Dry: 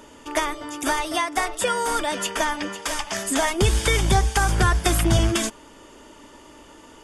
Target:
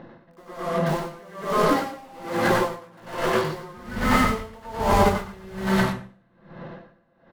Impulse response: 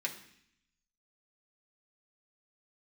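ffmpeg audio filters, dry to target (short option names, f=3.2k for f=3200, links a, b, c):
-filter_complex "[0:a]lowpass=3.1k,equalizer=f=74:w=0.96:g=-10.5,bandreject=f=50:t=h:w=6,bandreject=f=100:t=h:w=6,bandreject=f=150:t=h:w=6,bandreject=f=200:t=h:w=6,bandreject=f=250:t=h:w=6,asetrate=26222,aresample=44100,atempo=1.68179,asplit=2[a][b];[b]aeval=exprs='(mod(20*val(0)+1,2)-1)/20':c=same,volume=-7.5dB[c];[a][c]amix=inputs=2:normalize=0,asetrate=42336,aresample=44100,aecho=1:1:32.07|113.7:0.316|0.794,asplit=2[d][e];[1:a]atrim=start_sample=2205,asetrate=26019,aresample=44100,adelay=93[f];[e][f]afir=irnorm=-1:irlink=0,volume=-2dB[g];[d][g]amix=inputs=2:normalize=0,aeval=exprs='val(0)*pow(10,-28*(0.5-0.5*cos(2*PI*1.2*n/s))/20)':c=same,volume=1.5dB"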